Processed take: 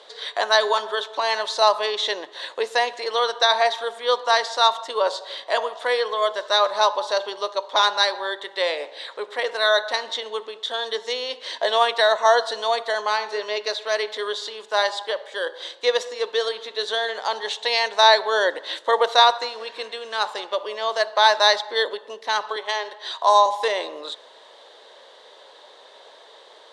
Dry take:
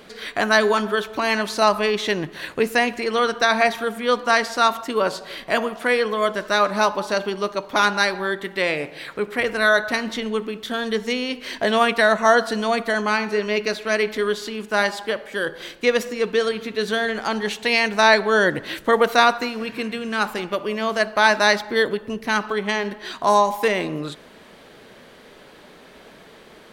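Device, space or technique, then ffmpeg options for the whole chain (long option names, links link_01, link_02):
phone speaker on a table: -filter_complex "[0:a]highpass=frequency=470:width=0.5412,highpass=frequency=470:width=1.3066,equalizer=frequency=540:width_type=q:width=4:gain=4,equalizer=frequency=950:width_type=q:width=4:gain=6,equalizer=frequency=1400:width_type=q:width=4:gain=-5,equalizer=frequency=2400:width_type=q:width=4:gain=-9,equalizer=frequency=3700:width_type=q:width=4:gain=10,lowpass=frequency=8500:width=0.5412,lowpass=frequency=8500:width=1.3066,asettb=1/sr,asplit=3[link_01][link_02][link_03];[link_01]atrim=end=22.564[link_04];[link_02]atrim=start=22.56:end=23.46,asetpts=PTS-STARTPTS,afade=type=in:duration=0.004:curve=qsin,afade=type=out:start_time=0.896:duration=0.004:curve=qsin,highpass=380[link_05];[link_03]atrim=start=23.456[link_06];[link_04][link_05]acrossfade=duration=0.004:curve1=hsin:curve2=qsin[link_07];[link_07][link_06]acrossfade=duration=0.004:curve1=qsin:curve2=hsin,volume=-1.5dB"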